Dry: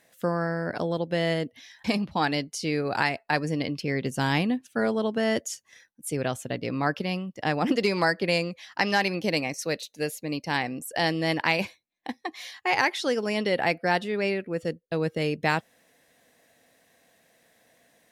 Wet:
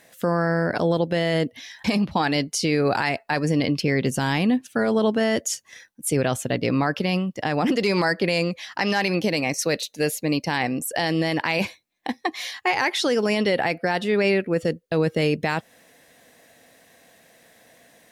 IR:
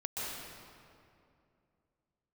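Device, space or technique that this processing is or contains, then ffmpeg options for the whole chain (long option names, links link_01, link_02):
stacked limiters: -af "alimiter=limit=-15.5dB:level=0:latency=1:release=196,alimiter=limit=-20.5dB:level=0:latency=1:release=24,volume=8.5dB"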